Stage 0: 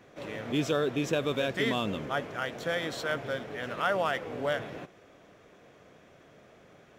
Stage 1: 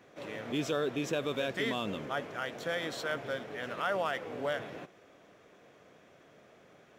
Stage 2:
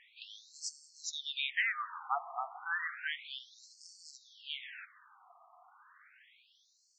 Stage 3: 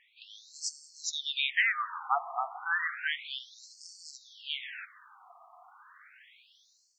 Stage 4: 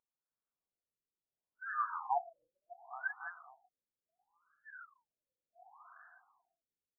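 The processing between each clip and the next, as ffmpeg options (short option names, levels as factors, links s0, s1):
-filter_complex "[0:a]lowshelf=f=96:g=-10,asplit=2[s0][s1];[s1]alimiter=limit=0.075:level=0:latency=1,volume=0.75[s2];[s0][s2]amix=inputs=2:normalize=0,volume=0.447"
-af "afftfilt=real='re*between(b*sr/1024,920*pow(6200/920,0.5+0.5*sin(2*PI*0.32*pts/sr))/1.41,920*pow(6200/920,0.5+0.5*sin(2*PI*0.32*pts/sr))*1.41)':imag='im*between(b*sr/1024,920*pow(6200/920,0.5+0.5*sin(2*PI*0.32*pts/sr))/1.41,920*pow(6200/920,0.5+0.5*sin(2*PI*0.32*pts/sr))*1.41)':win_size=1024:overlap=0.75,volume=2"
-af "dynaudnorm=f=250:g=3:m=2.82,volume=0.668"
-af "aecho=1:1:548|1096|1644:0.211|0.0613|0.0178,afftfilt=real='re*lt(b*sr/1024,550*pow(1800/550,0.5+0.5*sin(2*PI*0.7*pts/sr)))':imag='im*lt(b*sr/1024,550*pow(1800/550,0.5+0.5*sin(2*PI*0.7*pts/sr)))':win_size=1024:overlap=0.75,volume=0.891"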